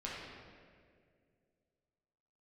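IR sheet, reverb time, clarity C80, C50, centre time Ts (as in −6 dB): 2.1 s, 1.0 dB, −1.5 dB, 111 ms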